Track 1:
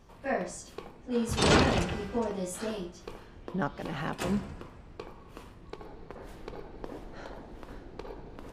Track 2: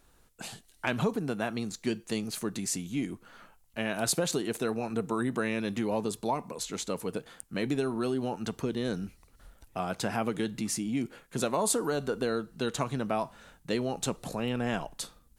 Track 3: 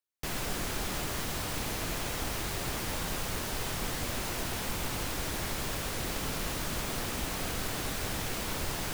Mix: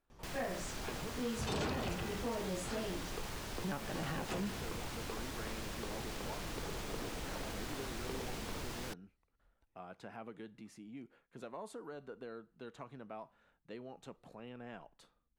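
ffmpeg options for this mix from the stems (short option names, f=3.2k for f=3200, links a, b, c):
-filter_complex "[0:a]adelay=100,volume=-2dB[a];[1:a]bass=f=250:g=-4,treble=f=4k:g=-15,volume=-16.5dB[b];[2:a]volume=-8.5dB[c];[a][b][c]amix=inputs=3:normalize=0,acrossover=split=1000|7900[d][e][f];[d]acompressor=threshold=-34dB:ratio=4[g];[e]acompressor=threshold=-41dB:ratio=4[h];[f]acompressor=threshold=-56dB:ratio=4[i];[g][h][i]amix=inputs=3:normalize=0,asoftclip=type=tanh:threshold=-30.5dB"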